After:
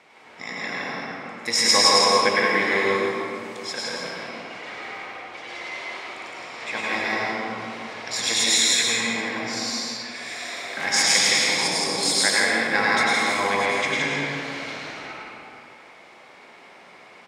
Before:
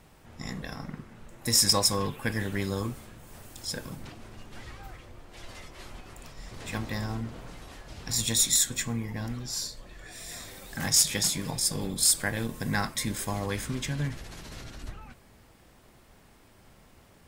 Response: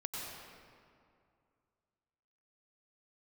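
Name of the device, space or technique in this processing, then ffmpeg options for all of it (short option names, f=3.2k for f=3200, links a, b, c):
station announcement: -filter_complex "[0:a]highpass=440,lowpass=4.9k,equalizer=f=2.2k:t=o:w=0.2:g=11,aecho=1:1:105|166.2:0.631|0.708[a];[1:a]atrim=start_sample=2205[b];[a][b]afir=irnorm=-1:irlink=0,volume=9dB"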